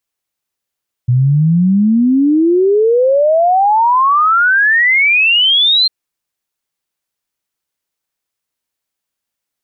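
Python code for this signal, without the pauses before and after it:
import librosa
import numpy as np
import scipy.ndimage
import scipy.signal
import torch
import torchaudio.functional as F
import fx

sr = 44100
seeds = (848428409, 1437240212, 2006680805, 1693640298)

y = fx.ess(sr, length_s=4.8, from_hz=120.0, to_hz=4200.0, level_db=-7.5)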